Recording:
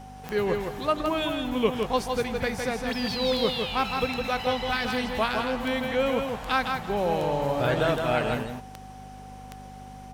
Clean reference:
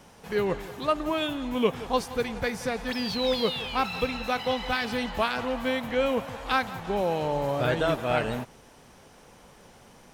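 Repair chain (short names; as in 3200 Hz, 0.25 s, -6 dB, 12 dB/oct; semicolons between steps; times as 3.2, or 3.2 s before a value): de-click; de-hum 49.9 Hz, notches 5; notch 760 Hz, Q 30; inverse comb 0.16 s -5 dB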